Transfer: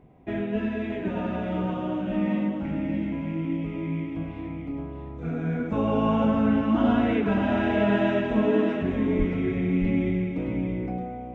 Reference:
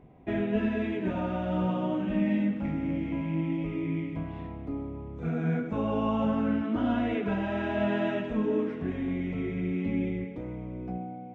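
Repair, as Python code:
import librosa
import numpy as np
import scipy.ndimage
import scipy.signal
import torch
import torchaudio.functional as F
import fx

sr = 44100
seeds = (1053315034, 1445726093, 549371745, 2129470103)

y = fx.fix_deplosive(x, sr, at_s=(9.18,))
y = fx.fix_echo_inverse(y, sr, delay_ms=619, level_db=-5.5)
y = fx.gain(y, sr, db=fx.steps((0.0, 0.0), (5.6, -4.5)))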